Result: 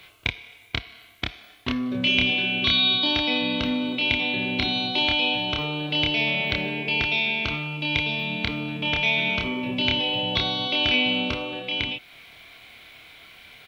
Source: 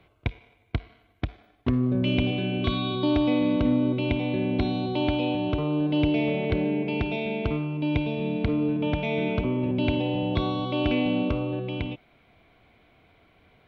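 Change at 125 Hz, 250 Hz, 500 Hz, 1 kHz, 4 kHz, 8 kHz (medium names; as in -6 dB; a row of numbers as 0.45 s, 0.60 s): -6.0 dB, -5.0 dB, -4.5 dB, +2.5 dB, +14.5 dB, no reading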